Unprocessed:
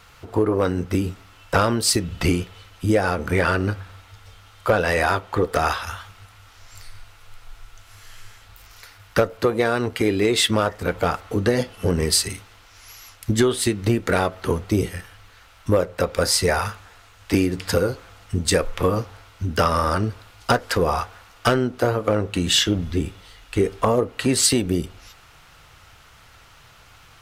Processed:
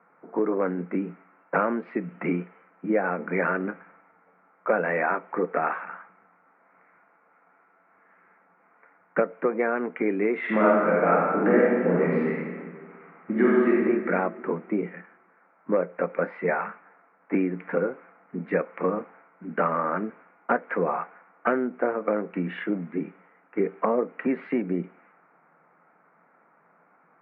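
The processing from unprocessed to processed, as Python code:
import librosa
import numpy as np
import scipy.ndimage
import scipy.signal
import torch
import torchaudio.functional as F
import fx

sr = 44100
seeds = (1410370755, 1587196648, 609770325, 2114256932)

y = fx.reverb_throw(x, sr, start_s=10.38, length_s=3.38, rt60_s=1.7, drr_db=-5.5)
y = fx.env_lowpass(y, sr, base_hz=1100.0, full_db=-15.5)
y = scipy.signal.sosfilt(scipy.signal.cheby1(5, 1.0, [170.0, 2300.0], 'bandpass', fs=sr, output='sos'), y)
y = F.gain(torch.from_numpy(y), -4.0).numpy()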